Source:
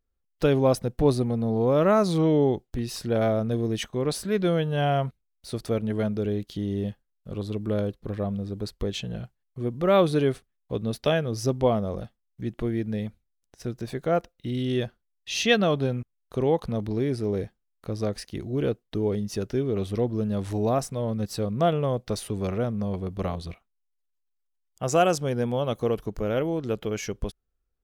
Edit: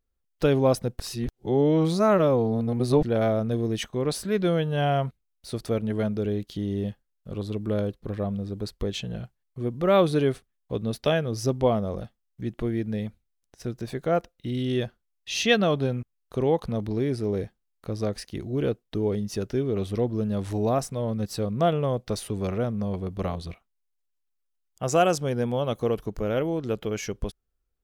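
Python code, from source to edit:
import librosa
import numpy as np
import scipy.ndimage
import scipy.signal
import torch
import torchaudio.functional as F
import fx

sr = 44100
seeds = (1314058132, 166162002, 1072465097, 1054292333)

y = fx.edit(x, sr, fx.reverse_span(start_s=1.0, length_s=2.03), tone=tone)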